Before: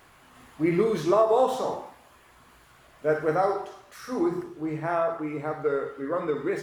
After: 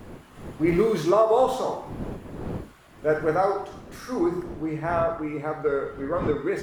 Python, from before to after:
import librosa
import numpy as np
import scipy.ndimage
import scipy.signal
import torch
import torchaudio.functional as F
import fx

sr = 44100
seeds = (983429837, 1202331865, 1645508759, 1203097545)

y = fx.law_mismatch(x, sr, coded='mu', at=(0.68, 1.1))
y = fx.dmg_wind(y, sr, seeds[0], corner_hz=330.0, level_db=-40.0)
y = y * librosa.db_to_amplitude(1.5)